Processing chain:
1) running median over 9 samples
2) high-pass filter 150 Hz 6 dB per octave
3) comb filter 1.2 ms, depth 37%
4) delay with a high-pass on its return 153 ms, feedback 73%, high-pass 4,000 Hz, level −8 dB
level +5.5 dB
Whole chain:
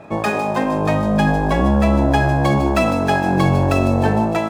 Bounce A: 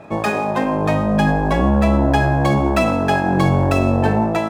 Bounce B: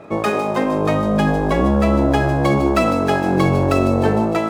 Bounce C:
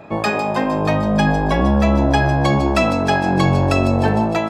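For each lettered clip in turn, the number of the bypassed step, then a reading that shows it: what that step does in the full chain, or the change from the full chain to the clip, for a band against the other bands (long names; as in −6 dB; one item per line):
4, echo-to-direct ratio −18.0 dB to none audible
3, 500 Hz band +2.5 dB
1, 4 kHz band +3.0 dB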